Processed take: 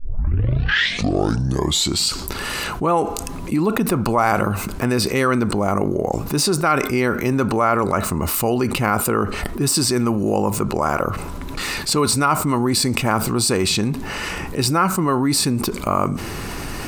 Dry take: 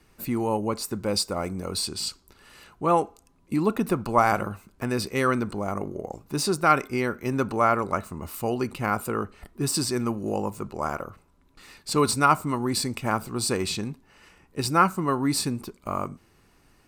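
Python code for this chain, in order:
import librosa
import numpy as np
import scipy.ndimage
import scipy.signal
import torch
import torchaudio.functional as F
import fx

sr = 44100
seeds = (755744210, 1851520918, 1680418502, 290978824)

y = fx.tape_start_head(x, sr, length_s=2.1)
y = fx.env_flatten(y, sr, amount_pct=70)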